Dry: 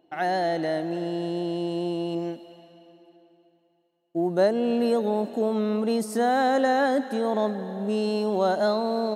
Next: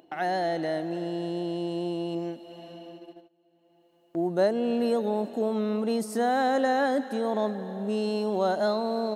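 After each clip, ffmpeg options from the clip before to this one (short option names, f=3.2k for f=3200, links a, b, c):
-af "agate=range=-28dB:threshold=-53dB:ratio=16:detection=peak,acompressor=mode=upward:threshold=-30dB:ratio=2.5,volume=-2.5dB"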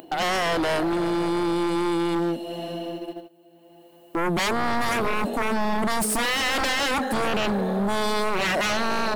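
-af "aexciter=amount=1.3:drive=9.3:freq=8.3k,aeval=exprs='0.224*sin(PI/2*6.31*val(0)/0.224)':c=same,aeval=exprs='0.237*(cos(1*acos(clip(val(0)/0.237,-1,1)))-cos(1*PI/2))+0.00473*(cos(6*acos(clip(val(0)/0.237,-1,1)))-cos(6*PI/2))':c=same,volume=-7.5dB"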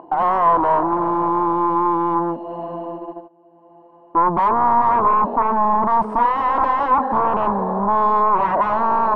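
-af "lowpass=f=1k:t=q:w=9"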